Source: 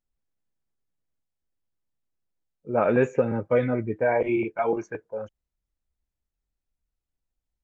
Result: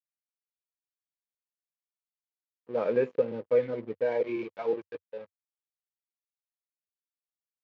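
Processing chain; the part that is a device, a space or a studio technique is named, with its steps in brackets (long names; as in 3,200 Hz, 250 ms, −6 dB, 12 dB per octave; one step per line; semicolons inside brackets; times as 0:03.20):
0:02.74–0:03.86: mains-hum notches 50/100/150/200/250/300/350 Hz
blown loudspeaker (dead-zone distortion −38 dBFS; loudspeaker in its box 140–4,600 Hz, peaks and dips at 480 Hz +9 dB, 730 Hz −5 dB, 1,400 Hz −5 dB)
parametric band 91 Hz −6 dB 0.26 octaves
level −8 dB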